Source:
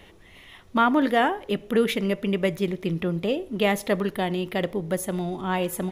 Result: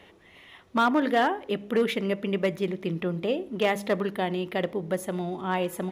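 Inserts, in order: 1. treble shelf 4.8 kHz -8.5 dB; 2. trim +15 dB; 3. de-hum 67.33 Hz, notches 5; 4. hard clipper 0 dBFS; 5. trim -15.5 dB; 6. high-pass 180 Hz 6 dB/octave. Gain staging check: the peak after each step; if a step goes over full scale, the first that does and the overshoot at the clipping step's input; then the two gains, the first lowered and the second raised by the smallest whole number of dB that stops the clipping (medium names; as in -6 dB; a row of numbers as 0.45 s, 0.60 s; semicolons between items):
-9.0 dBFS, +6.0 dBFS, +6.0 dBFS, 0.0 dBFS, -15.5 dBFS, -12.5 dBFS; step 2, 6.0 dB; step 2 +9 dB, step 5 -9.5 dB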